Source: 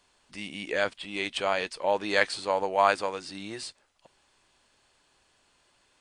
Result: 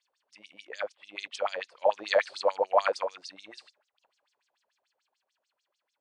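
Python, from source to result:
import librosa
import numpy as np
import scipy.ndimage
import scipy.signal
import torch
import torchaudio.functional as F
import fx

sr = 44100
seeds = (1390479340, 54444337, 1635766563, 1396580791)

y = fx.doppler_pass(x, sr, speed_mps=5, closest_m=3.5, pass_at_s=2.38)
y = fx.filter_lfo_bandpass(y, sr, shape='sine', hz=6.8, low_hz=510.0, high_hz=6300.0, q=4.8)
y = y * librosa.db_to_amplitude(9.0)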